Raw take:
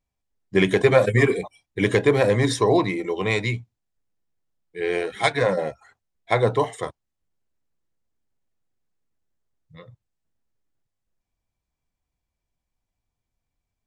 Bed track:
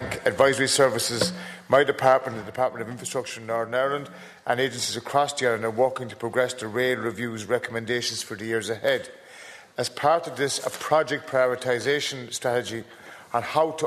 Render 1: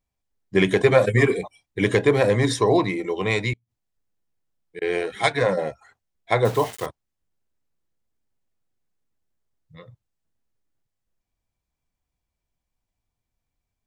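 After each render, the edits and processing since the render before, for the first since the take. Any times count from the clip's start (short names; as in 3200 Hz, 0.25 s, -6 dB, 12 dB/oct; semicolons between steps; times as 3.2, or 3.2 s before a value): 3.53–4.82 flipped gate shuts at -24 dBFS, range -33 dB; 6.45–6.86 requantised 6-bit, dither none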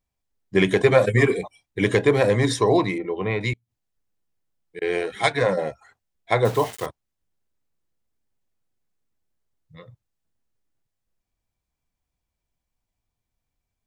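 2.98–3.41 air absorption 460 m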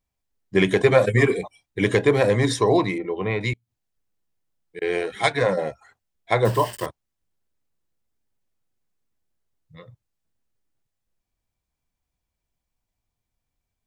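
6.46–6.86 ripple EQ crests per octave 1.3, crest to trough 9 dB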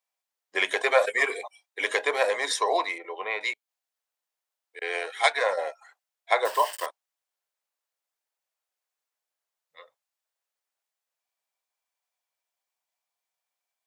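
HPF 590 Hz 24 dB/oct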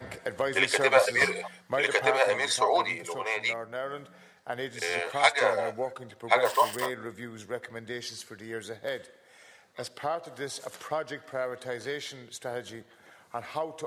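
add bed track -11 dB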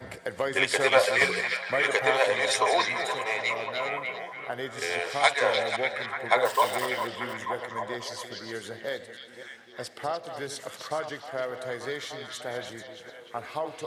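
reverse delay 0.262 s, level -10 dB; delay with a stepping band-pass 0.296 s, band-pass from 3700 Hz, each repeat -0.7 oct, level -2 dB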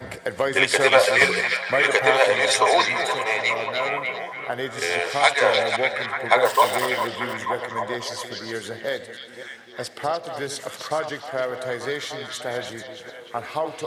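gain +6 dB; limiter -2 dBFS, peak gain reduction 2.5 dB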